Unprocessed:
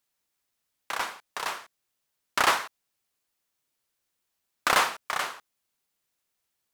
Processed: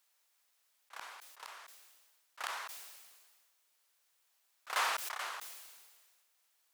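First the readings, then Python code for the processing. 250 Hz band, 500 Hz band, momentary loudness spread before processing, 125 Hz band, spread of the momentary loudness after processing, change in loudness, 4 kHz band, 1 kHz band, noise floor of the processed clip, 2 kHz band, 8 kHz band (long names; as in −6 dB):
below −20 dB, −15.5 dB, 14 LU, below −30 dB, 22 LU, −12.0 dB, −11.0 dB, −12.5 dB, −76 dBFS, −12.0 dB, −9.5 dB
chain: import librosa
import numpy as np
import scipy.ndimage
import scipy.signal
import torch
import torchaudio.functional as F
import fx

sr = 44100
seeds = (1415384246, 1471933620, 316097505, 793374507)

y = scipy.signal.sosfilt(scipy.signal.butter(2, 610.0, 'highpass', fs=sr, output='sos'), x)
y = fx.auto_swell(y, sr, attack_ms=724.0)
y = fx.sustainer(y, sr, db_per_s=34.0)
y = y * librosa.db_to_amplitude(5.0)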